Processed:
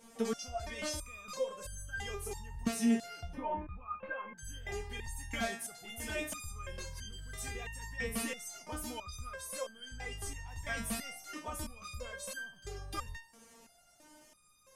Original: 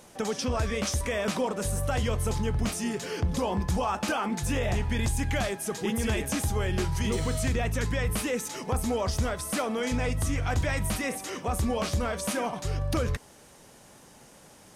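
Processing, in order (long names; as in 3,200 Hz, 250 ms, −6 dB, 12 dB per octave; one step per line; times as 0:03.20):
0:03.34–0:04.38: Butterworth low-pass 2,400 Hz 36 dB per octave
step-sequenced resonator 3 Hz 230–1,600 Hz
level +8 dB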